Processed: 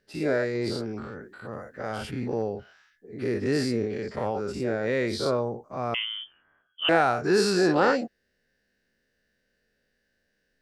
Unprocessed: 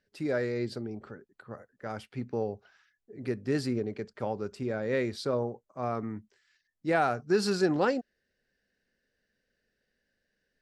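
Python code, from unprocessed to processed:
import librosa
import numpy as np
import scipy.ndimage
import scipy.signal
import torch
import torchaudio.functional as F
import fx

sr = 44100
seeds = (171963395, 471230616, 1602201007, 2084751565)

y = fx.spec_dilate(x, sr, span_ms=120)
y = fx.transient(y, sr, attack_db=1, sustain_db=6, at=(0.55, 2.42))
y = fx.freq_invert(y, sr, carrier_hz=3300, at=(5.94, 6.89))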